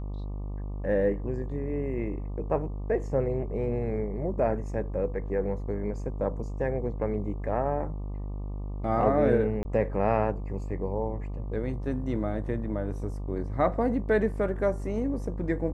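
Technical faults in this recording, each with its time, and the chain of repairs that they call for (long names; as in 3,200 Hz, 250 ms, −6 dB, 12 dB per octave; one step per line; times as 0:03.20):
mains buzz 50 Hz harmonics 24 −34 dBFS
0:09.63–0:09.65: drop-out 20 ms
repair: hum removal 50 Hz, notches 24
repair the gap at 0:09.63, 20 ms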